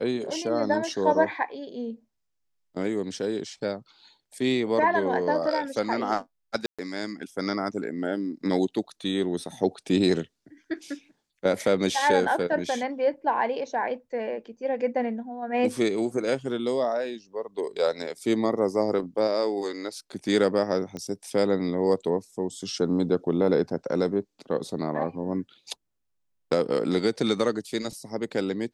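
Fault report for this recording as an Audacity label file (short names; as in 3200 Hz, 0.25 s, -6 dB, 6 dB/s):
6.660000	6.790000	gap 0.126 s
20.970000	20.970000	pop -22 dBFS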